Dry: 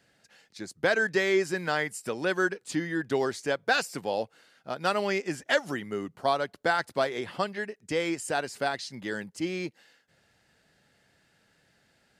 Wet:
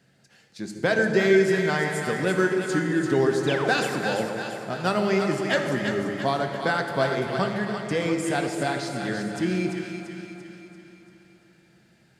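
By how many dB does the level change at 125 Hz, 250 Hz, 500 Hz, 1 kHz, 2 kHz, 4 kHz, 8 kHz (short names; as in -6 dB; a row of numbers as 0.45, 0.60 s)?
+11.5, +8.0, +5.5, +3.0, +3.0, +2.5, +2.5 dB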